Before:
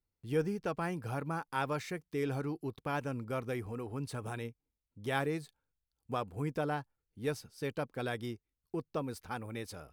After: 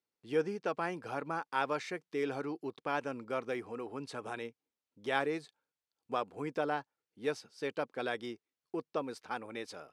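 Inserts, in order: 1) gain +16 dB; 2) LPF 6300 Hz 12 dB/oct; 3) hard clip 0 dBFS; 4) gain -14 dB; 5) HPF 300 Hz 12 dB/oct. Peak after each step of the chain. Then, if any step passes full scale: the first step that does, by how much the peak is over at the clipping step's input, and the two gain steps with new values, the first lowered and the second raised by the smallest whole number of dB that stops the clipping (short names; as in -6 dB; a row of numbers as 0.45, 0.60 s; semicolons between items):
-1.0, -1.5, -1.5, -15.5, -16.5 dBFS; no overload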